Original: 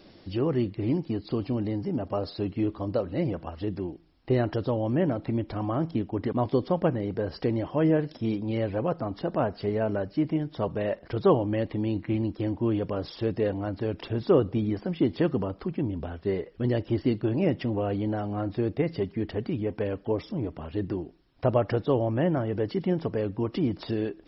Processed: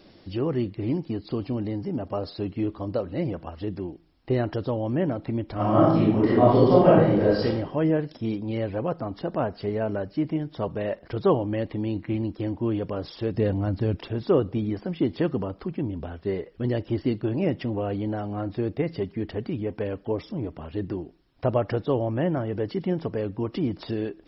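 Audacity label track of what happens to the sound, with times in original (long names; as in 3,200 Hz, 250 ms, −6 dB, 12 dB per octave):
5.540000	7.440000	thrown reverb, RT60 0.82 s, DRR −9.5 dB
13.340000	13.970000	bass and treble bass +9 dB, treble +4 dB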